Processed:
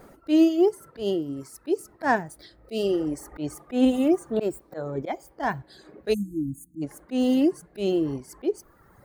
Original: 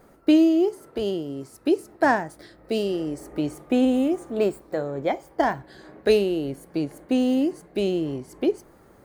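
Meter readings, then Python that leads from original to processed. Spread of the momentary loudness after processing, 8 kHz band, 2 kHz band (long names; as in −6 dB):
15 LU, +1.5 dB, −3.0 dB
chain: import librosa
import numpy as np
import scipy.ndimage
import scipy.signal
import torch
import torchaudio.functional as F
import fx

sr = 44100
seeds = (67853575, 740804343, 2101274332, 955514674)

y = fx.dereverb_blind(x, sr, rt60_s=1.2)
y = fx.auto_swell(y, sr, attack_ms=153.0)
y = fx.spec_erase(y, sr, start_s=6.14, length_s=0.68, low_hz=340.0, high_hz=6200.0)
y = y * 10.0 ** (4.5 / 20.0)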